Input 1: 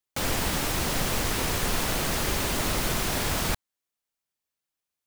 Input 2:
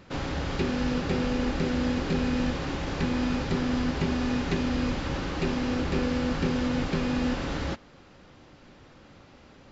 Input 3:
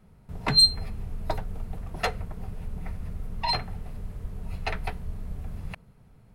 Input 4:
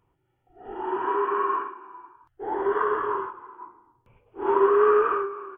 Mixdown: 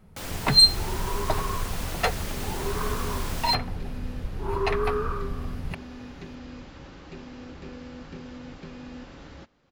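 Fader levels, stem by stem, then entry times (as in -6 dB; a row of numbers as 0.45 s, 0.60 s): -8.5 dB, -14.0 dB, +2.5 dB, -9.0 dB; 0.00 s, 1.70 s, 0.00 s, 0.00 s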